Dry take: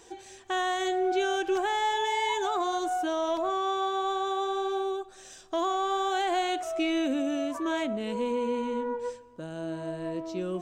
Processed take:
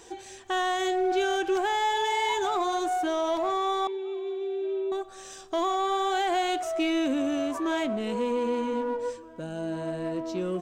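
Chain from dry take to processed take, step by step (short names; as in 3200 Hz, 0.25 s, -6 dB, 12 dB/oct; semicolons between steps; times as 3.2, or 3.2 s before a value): in parallel at -6 dB: overloaded stage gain 34.5 dB; 3.87–4.92 on the sum: double band-pass 1000 Hz, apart 2.7 oct; outdoor echo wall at 270 m, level -22 dB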